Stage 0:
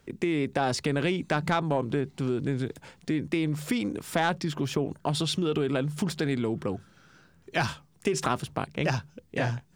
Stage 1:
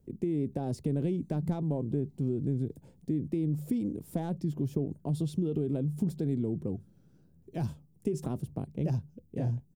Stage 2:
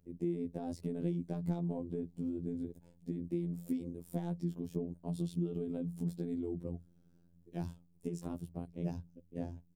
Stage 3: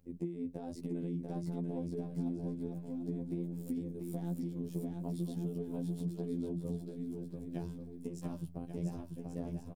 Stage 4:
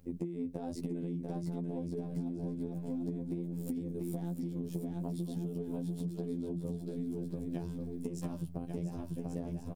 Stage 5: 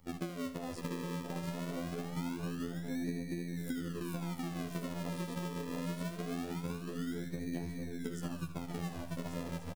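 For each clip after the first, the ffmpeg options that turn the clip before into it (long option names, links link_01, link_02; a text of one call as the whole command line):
ffmpeg -i in.wav -af "firequalizer=gain_entry='entry(170,0);entry(1300,-27);entry(12000,-7)':delay=0.05:min_phase=1" out.wav
ffmpeg -i in.wav -af "afftfilt=real='hypot(re,im)*cos(PI*b)':imag='0':win_size=2048:overlap=0.75,volume=-2.5dB" out.wav
ffmpeg -i in.wav -af "acompressor=threshold=-39dB:ratio=6,flanger=delay=3.7:depth=4:regen=63:speed=1.1:shape=sinusoidal,aecho=1:1:690|1138|1430|1620|1743:0.631|0.398|0.251|0.158|0.1,volume=6.5dB" out.wav
ffmpeg -i in.wav -af "acompressor=threshold=-42dB:ratio=6,volume=8dB" out.wav
ffmpeg -i in.wav -filter_complex "[0:a]acrossover=split=350|990|2100[link_01][link_02][link_03][link_04];[link_01]acrusher=samples=41:mix=1:aa=0.000001:lfo=1:lforange=41:lforate=0.23[link_05];[link_05][link_02][link_03][link_04]amix=inputs=4:normalize=0,aecho=1:1:77|154|231|308|385|462:0.224|0.123|0.0677|0.0372|0.0205|0.0113,volume=-1dB" out.wav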